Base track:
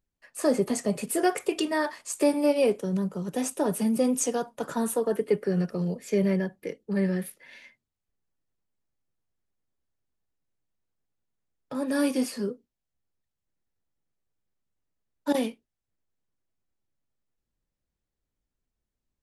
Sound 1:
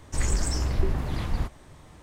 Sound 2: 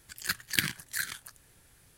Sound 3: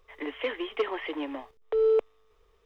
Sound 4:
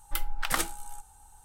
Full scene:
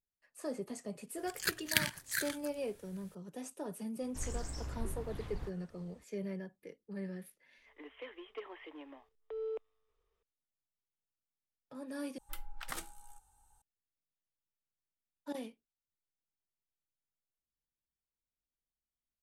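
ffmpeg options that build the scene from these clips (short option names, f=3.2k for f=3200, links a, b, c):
-filter_complex "[0:a]volume=-16dB,asplit=2[a][b];[a]atrim=end=12.184[c];[4:a]atrim=end=1.44,asetpts=PTS-STARTPTS,volume=-14dB[d];[b]atrim=start=13.616[e];[2:a]atrim=end=1.97,asetpts=PTS-STARTPTS,volume=-3dB,afade=t=in:d=0.004:c=hsin,afade=t=out:st=1.966:d=0.004:c=hsin,adelay=1180[f];[1:a]atrim=end=2.02,asetpts=PTS-STARTPTS,volume=-15.5dB,afade=t=in:d=0.004:c=hsin,afade=t=out:st=2.016:d=0.004:c=hsin,adelay=4020[g];[3:a]atrim=end=2.65,asetpts=PTS-STARTPTS,volume=-16.5dB,afade=t=in:d=0.004:c=hsin,afade=t=out:st=2.646:d=0.004:c=hsin,adelay=7580[h];[c][d]acrossfade=d=0.004:c1=hsin:c2=hsin[i];[i][e]acrossfade=d=0.004:c1=hsin:c2=hsin[j];[j][f][g][h]amix=inputs=4:normalize=0"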